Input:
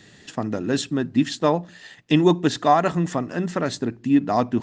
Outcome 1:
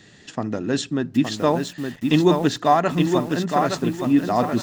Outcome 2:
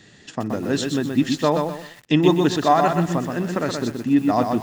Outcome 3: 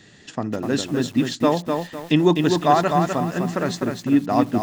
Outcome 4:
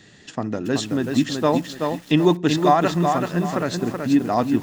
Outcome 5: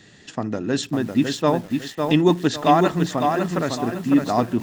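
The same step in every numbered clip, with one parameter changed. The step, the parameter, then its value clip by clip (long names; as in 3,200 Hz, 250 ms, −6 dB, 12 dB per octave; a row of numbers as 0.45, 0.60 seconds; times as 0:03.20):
feedback echo at a low word length, delay time: 867, 125, 252, 378, 554 milliseconds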